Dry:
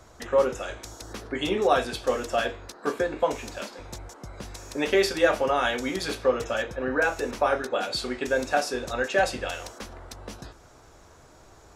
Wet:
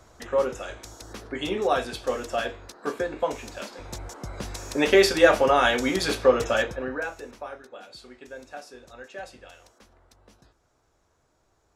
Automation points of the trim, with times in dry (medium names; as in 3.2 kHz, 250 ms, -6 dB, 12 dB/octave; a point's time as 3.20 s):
3.52 s -2 dB
4.16 s +4.5 dB
6.63 s +4.5 dB
7.00 s -7 dB
7.58 s -16 dB